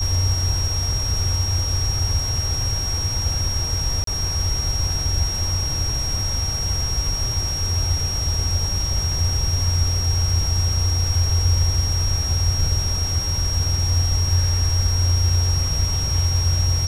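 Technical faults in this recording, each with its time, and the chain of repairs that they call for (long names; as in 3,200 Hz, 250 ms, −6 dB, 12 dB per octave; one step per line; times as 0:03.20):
whistle 5,600 Hz −24 dBFS
0:04.04–0:04.07: drop-out 33 ms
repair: notch filter 5,600 Hz, Q 30
repair the gap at 0:04.04, 33 ms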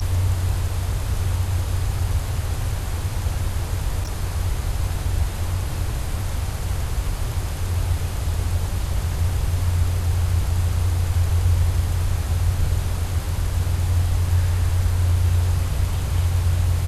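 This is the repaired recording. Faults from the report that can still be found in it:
none of them is left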